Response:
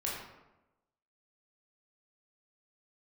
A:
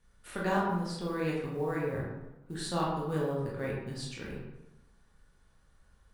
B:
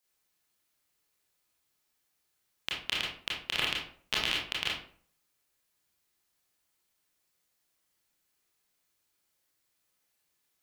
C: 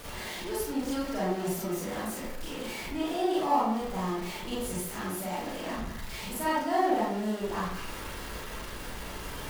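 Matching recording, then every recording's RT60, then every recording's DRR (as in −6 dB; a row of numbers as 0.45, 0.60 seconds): A; 1.0, 0.50, 0.70 seconds; −5.0, −4.5, −8.0 decibels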